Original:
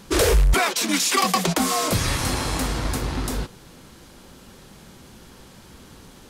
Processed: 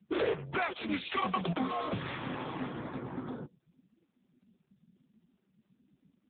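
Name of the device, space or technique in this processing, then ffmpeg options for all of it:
mobile call with aggressive noise cancelling: -af "highpass=frequency=130:width=0.5412,highpass=frequency=130:width=1.3066,afftdn=noise_reduction=29:noise_floor=-34,volume=-9dB" -ar 8000 -c:a libopencore_amrnb -b:a 7950

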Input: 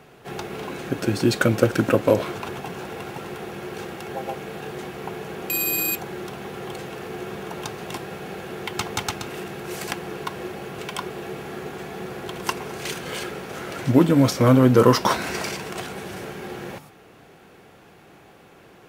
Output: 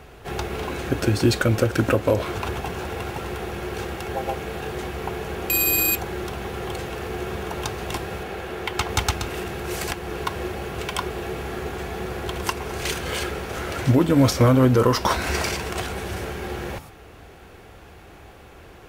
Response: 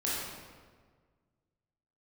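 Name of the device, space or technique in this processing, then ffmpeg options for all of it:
car stereo with a boomy subwoofer: -filter_complex "[0:a]asettb=1/sr,asplit=3[link_01][link_02][link_03];[link_01]atrim=end=8.234[link_04];[link_02]atrim=start=8.23:end=8.89,asetpts=PTS-STARTPTS,afade=type=in:duration=0.004:curve=qsin,afade=type=out:start_time=0.656:duration=0.004:curve=qsin,bass=frequency=250:gain=-5,treble=frequency=4000:gain=-4[link_05];[link_03]atrim=start=8.886[link_06];[link_04][link_05]acrossfade=duration=0.004:curve1=hsin:curve2=qsin[link_07];[link_07][link_06]acrossfade=duration=0.004:curve1=qsin:curve2=hsin,lowshelf=frequency=100:width_type=q:width=1.5:gain=13.5,alimiter=limit=-11dB:level=0:latency=1:release=268,volume=3.5dB"

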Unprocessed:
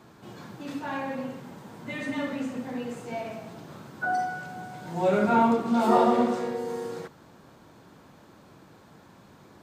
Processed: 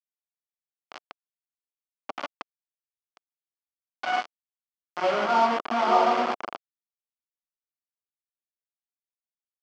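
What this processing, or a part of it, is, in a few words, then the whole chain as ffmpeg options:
hand-held game console: -af "acrusher=bits=3:mix=0:aa=0.000001,highpass=410,equalizer=frequency=470:width_type=q:width=4:gain=-6,equalizer=frequency=700:width_type=q:width=4:gain=4,equalizer=frequency=1200:width_type=q:width=4:gain=4,equalizer=frequency=1800:width_type=q:width=4:gain=-6,equalizer=frequency=2600:width_type=q:width=4:gain=-4,equalizer=frequency=3800:width_type=q:width=4:gain=-10,lowpass=frequency=4200:width=0.5412,lowpass=frequency=4200:width=1.3066"

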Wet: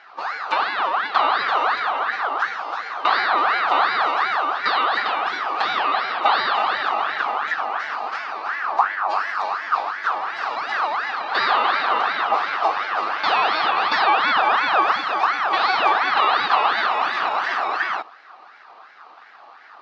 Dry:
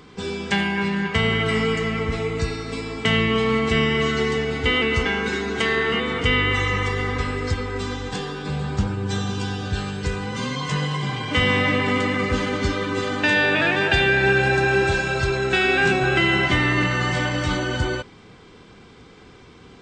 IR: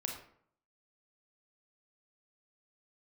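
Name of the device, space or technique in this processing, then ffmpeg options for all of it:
voice changer toy: -af "aeval=exprs='val(0)*sin(2*PI*1300*n/s+1300*0.45/2.8*sin(2*PI*2.8*n/s))':channel_layout=same,highpass=500,equalizer=frequency=540:width_type=q:width=4:gain=-5,equalizer=frequency=770:width_type=q:width=4:gain=8,equalizer=frequency=1200:width_type=q:width=4:gain=7,equalizer=frequency=2100:width_type=q:width=4:gain=-4,equalizer=frequency=3200:width_type=q:width=4:gain=-6,lowpass=frequency=4300:width=0.5412,lowpass=frequency=4300:width=1.3066,volume=2dB"

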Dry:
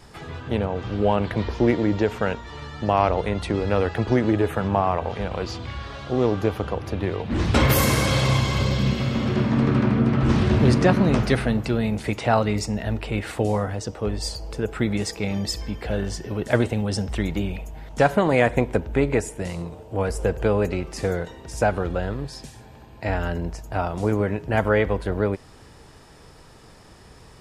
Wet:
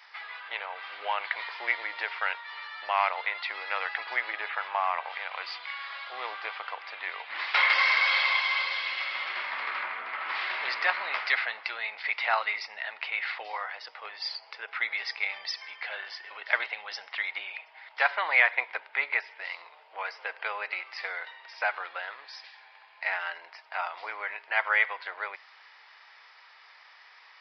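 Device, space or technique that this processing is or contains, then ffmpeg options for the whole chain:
musical greeting card: -filter_complex "[0:a]aresample=11025,aresample=44100,highpass=frequency=900:width=0.5412,highpass=frequency=900:width=1.3066,equalizer=frequency=2100:width_type=o:width=0.44:gain=9.5,asettb=1/sr,asplit=3[link_01][link_02][link_03];[link_01]atrim=end=9.824[link_04];[link_02]atrim=start=9.82:end=10.35,asetpts=PTS-STARTPTS,afade=type=in:duration=0.004:curve=qsin,afade=type=out:start_time=0.526:duration=0.004:curve=qsin,lowpass=frequency=2900:poles=1[link_05];[link_03]atrim=start=10.346[link_06];[link_04][link_05]acrossfade=duration=0.004:curve1=hsin:curve2=qsin[link_07];[link_07][link_06]acrossfade=duration=0.004:curve1=qsin:curve2=hsin,volume=-1.5dB"

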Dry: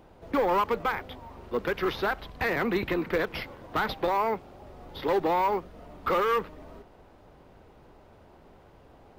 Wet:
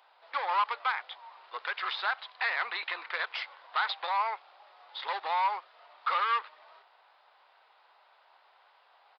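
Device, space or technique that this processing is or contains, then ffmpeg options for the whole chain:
musical greeting card: -af "aresample=11025,aresample=44100,highpass=frequency=850:width=0.5412,highpass=frequency=850:width=1.3066,equalizer=frequency=3800:width_type=o:width=0.46:gain=4.5"

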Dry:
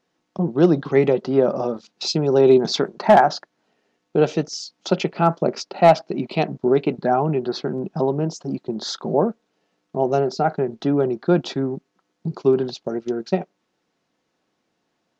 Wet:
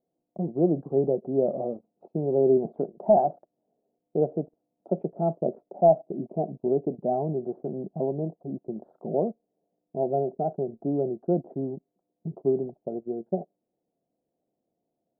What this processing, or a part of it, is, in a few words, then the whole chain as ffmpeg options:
under water: -af "lowpass=frequency=590:width=0.5412,lowpass=frequency=590:width=1.3066,equalizer=frequency=690:width_type=o:width=0.51:gain=10,volume=-8dB"

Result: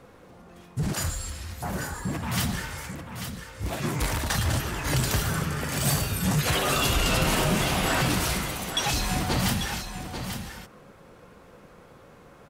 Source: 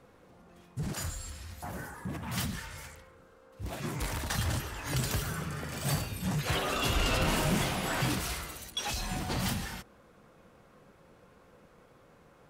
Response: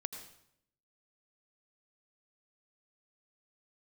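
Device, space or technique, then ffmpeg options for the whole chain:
clipper into limiter: -filter_complex "[0:a]asoftclip=type=hard:threshold=-18.5dB,alimiter=limit=-22.5dB:level=0:latency=1:release=172,asettb=1/sr,asplit=3[link_01][link_02][link_03];[link_01]atrim=end=5.604[link_04];[link_02]atrim=start=5.6:end=7.35,asetpts=PTS-STARTPTS,afade=type=in:duration=0.004:curve=qsin,afade=type=out:start_time=1.746:duration=0.004:curve=qsin,equalizer=frequency=12000:width=0.39:gain=5[link_05];[link_03]atrim=start=7.346[link_06];[link_04][link_05]acrossfade=duration=0.004:curve1=hsin:curve2=qsin[link_07];[link_07][link_06]acrossfade=duration=0.004:curve1=qsin:curve2=hsin,aecho=1:1:841:0.376,volume=7.5dB"

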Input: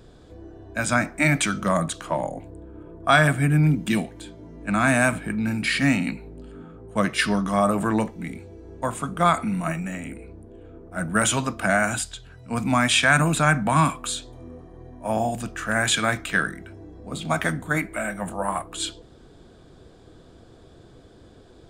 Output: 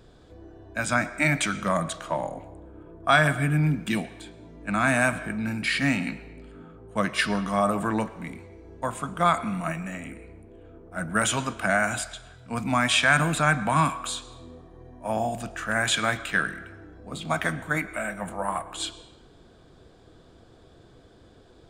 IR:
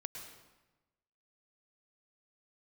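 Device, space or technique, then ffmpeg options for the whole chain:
filtered reverb send: -filter_complex "[0:a]asplit=2[link_01][link_02];[link_02]highpass=460,lowpass=6300[link_03];[1:a]atrim=start_sample=2205[link_04];[link_03][link_04]afir=irnorm=-1:irlink=0,volume=-6.5dB[link_05];[link_01][link_05]amix=inputs=2:normalize=0,volume=-4dB"

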